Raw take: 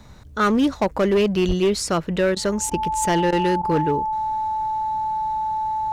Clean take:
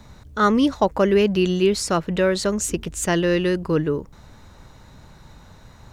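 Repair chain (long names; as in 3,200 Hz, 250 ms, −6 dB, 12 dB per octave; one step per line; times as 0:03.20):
clipped peaks rebuilt −13.5 dBFS
notch filter 870 Hz, Q 30
0:01.47–0:01.59: high-pass filter 140 Hz 24 dB per octave
repair the gap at 0:02.35/0:02.70/0:03.31/0:03.62, 13 ms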